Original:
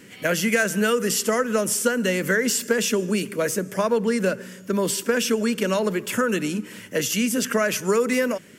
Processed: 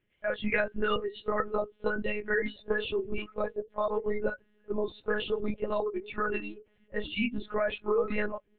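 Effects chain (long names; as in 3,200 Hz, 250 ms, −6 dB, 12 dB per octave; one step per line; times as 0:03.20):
echo through a band-pass that steps 630 ms, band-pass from 220 Hz, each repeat 1.4 octaves, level −10 dB
noise reduction from a noise print of the clip's start 24 dB
one-pitch LPC vocoder at 8 kHz 210 Hz
level −6 dB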